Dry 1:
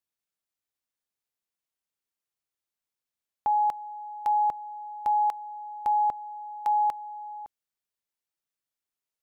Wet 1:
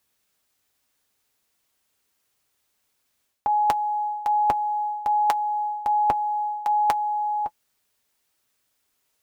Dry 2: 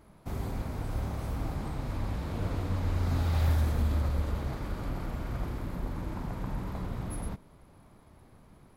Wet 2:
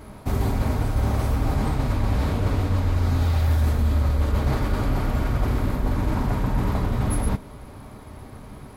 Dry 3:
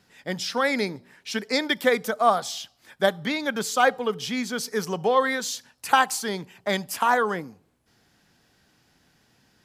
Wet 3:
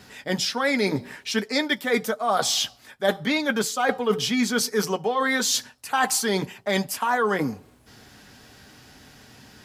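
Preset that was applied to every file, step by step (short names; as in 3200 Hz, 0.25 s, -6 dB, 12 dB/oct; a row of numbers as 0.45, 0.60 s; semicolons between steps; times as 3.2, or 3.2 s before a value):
reverse; compressor 8:1, threshold -34 dBFS; reverse; notch comb 170 Hz; match loudness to -24 LUFS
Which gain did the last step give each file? +19.0, +17.0, +15.0 dB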